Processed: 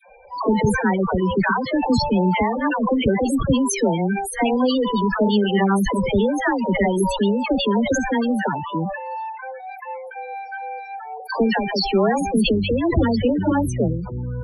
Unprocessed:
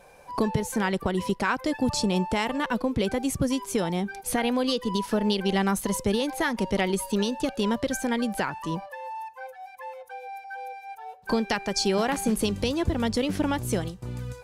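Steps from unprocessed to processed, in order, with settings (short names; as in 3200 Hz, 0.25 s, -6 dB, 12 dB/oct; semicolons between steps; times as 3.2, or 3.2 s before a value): dispersion lows, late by 95 ms, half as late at 690 Hz; loudest bins only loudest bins 16; sustainer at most 56 dB/s; gain +6.5 dB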